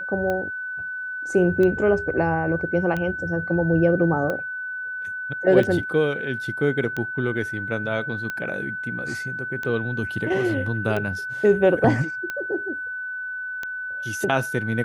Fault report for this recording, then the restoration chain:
tick 45 rpm -15 dBFS
tone 1500 Hz -28 dBFS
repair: de-click; notch 1500 Hz, Q 30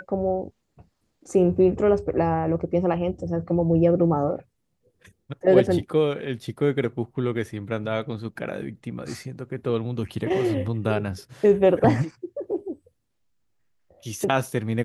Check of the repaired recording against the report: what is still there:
none

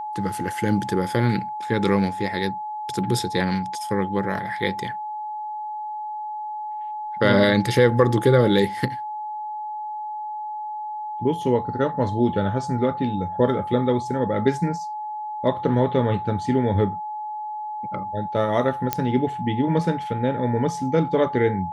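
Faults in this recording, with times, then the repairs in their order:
tone 850 Hz -28 dBFS
18.93 pop -5 dBFS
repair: de-click; notch 850 Hz, Q 30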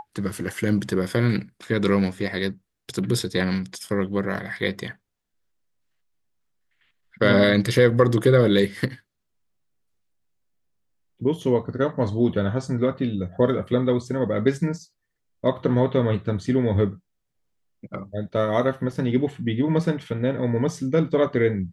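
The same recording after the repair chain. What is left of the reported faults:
none

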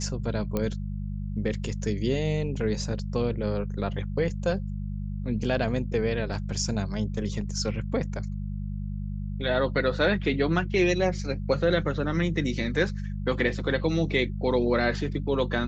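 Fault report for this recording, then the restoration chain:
hum 50 Hz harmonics 4 -32 dBFS
0.57 pop -14 dBFS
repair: de-click; de-hum 50 Hz, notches 4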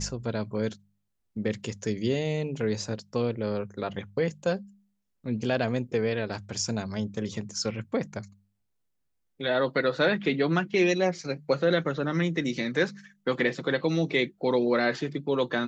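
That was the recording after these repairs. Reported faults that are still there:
none

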